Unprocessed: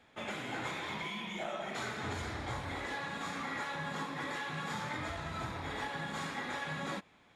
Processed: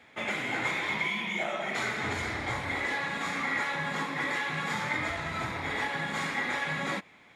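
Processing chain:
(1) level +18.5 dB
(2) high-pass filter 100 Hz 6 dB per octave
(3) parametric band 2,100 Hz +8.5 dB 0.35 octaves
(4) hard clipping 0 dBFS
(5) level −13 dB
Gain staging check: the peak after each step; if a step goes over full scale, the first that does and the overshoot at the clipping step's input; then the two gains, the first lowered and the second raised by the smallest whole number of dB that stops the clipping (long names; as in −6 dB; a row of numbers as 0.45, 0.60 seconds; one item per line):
−6.5, −7.0, −5.0, −5.0, −18.0 dBFS
no step passes full scale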